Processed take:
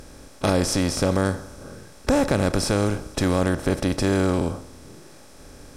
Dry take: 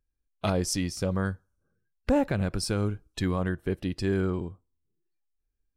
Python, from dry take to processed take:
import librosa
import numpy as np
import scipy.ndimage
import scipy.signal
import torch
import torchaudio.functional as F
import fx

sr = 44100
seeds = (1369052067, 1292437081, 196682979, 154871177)

y = fx.bin_compress(x, sr, power=0.4)
y = y * librosa.db_to_amplitude(1.5)